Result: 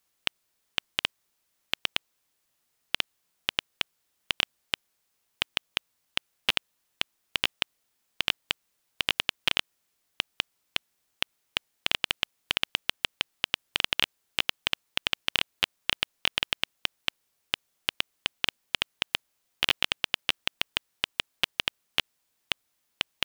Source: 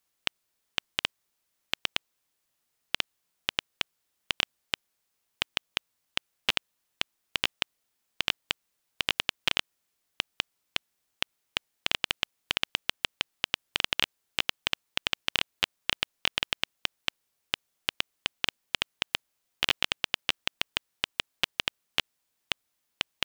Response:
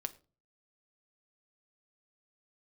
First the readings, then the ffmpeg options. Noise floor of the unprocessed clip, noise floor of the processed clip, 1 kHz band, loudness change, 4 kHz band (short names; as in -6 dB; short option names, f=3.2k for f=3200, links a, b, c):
-79 dBFS, -76 dBFS, +0.5 dB, +1.5 dB, +1.5 dB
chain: -af "acontrast=34,volume=-2.5dB"